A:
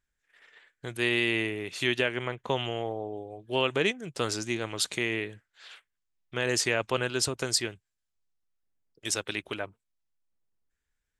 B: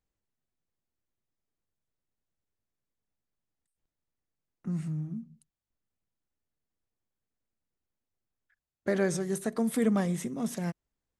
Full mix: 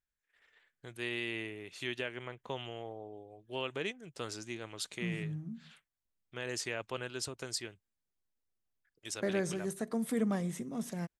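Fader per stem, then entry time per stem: −11.0, −5.5 decibels; 0.00, 0.35 seconds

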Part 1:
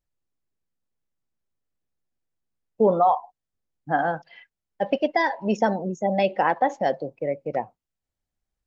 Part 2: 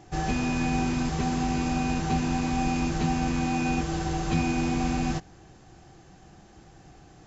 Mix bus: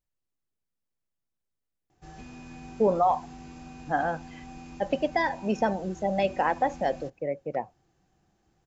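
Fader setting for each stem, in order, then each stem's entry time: −4.0, −18.0 decibels; 0.00, 1.90 seconds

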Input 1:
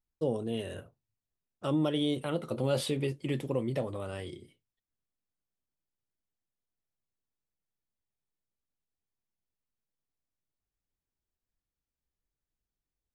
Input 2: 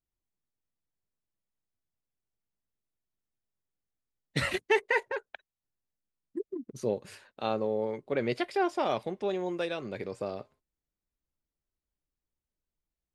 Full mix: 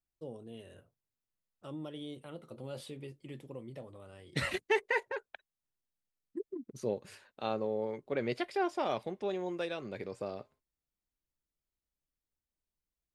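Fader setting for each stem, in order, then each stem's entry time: −14.0, −4.0 decibels; 0.00, 0.00 seconds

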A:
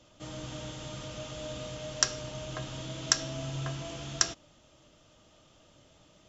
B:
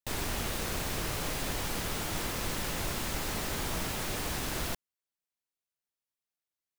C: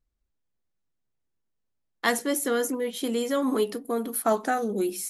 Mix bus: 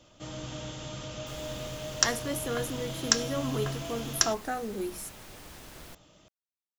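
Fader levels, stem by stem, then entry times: +1.5, −13.5, −7.5 decibels; 0.00, 1.20, 0.00 seconds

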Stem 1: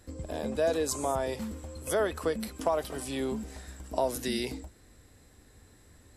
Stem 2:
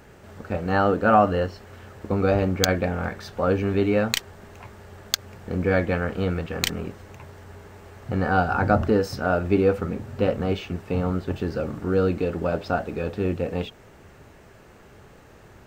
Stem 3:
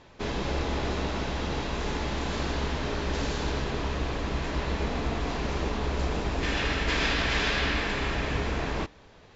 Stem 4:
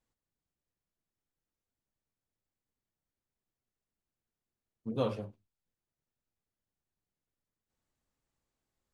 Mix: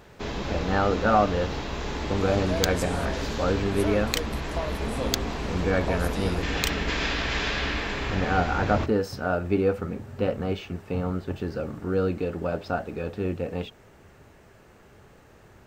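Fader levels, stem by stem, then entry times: −5.0, −3.5, −1.0, −1.0 decibels; 1.90, 0.00, 0.00, 0.00 seconds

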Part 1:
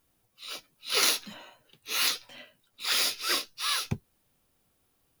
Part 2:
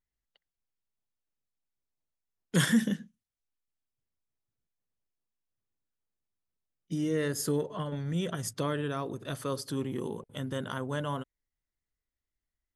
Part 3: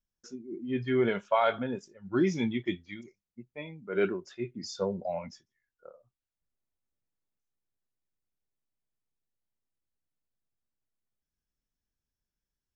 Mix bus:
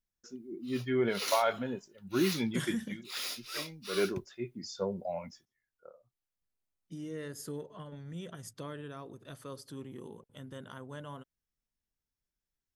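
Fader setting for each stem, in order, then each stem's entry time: −11.5, −11.0, −3.0 decibels; 0.25, 0.00, 0.00 seconds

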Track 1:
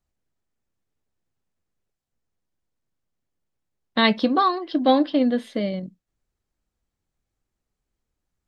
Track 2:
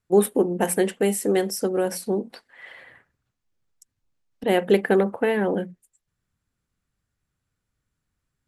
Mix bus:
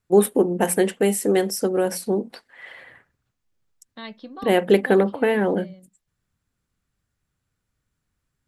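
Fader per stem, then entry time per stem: −19.0, +2.0 decibels; 0.00, 0.00 seconds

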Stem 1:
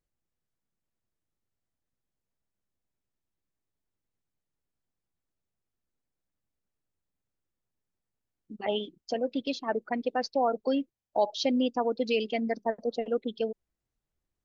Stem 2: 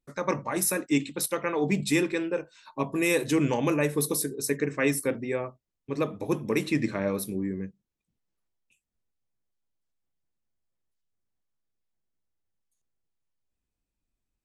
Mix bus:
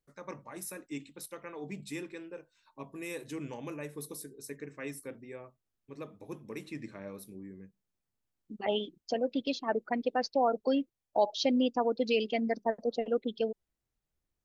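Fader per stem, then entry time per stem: −1.0, −15.5 decibels; 0.00, 0.00 seconds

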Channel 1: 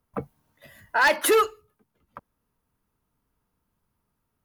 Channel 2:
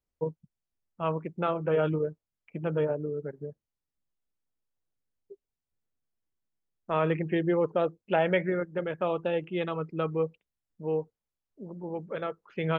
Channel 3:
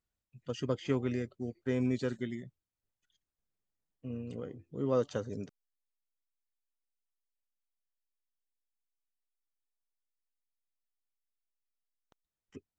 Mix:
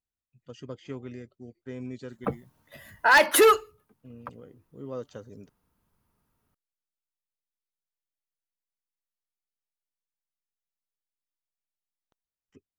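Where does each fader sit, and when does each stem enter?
+2.0 dB, muted, −7.0 dB; 2.10 s, muted, 0.00 s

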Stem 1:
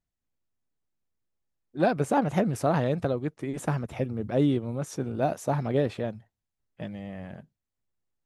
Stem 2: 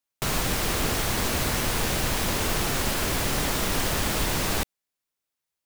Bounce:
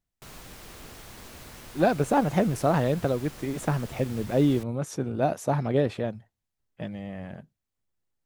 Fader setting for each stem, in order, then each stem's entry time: +1.5, −19.5 decibels; 0.00, 0.00 seconds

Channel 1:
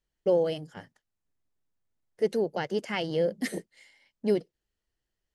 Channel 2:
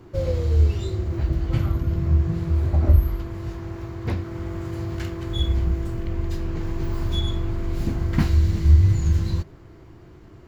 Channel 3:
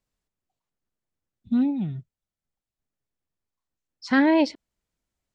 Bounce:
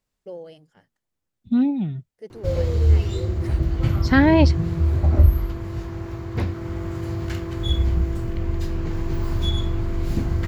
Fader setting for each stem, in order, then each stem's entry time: −13.0, +1.5, +3.0 decibels; 0.00, 2.30, 0.00 seconds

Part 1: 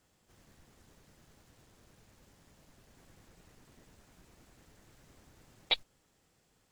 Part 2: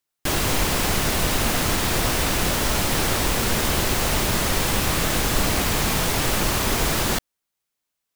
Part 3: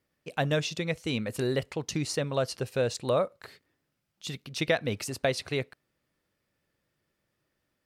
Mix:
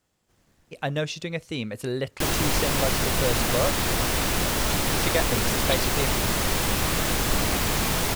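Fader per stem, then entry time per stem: −1.5, −2.5, 0.0 decibels; 0.00, 1.95, 0.45 seconds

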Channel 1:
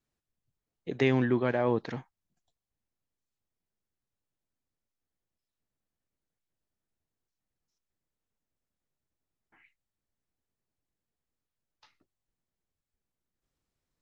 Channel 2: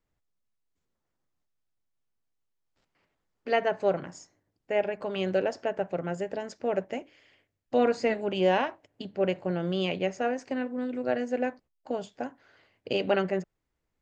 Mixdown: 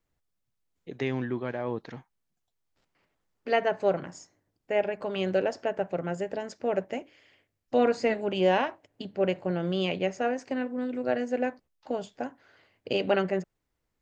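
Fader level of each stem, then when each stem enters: −5.0, +0.5 decibels; 0.00, 0.00 seconds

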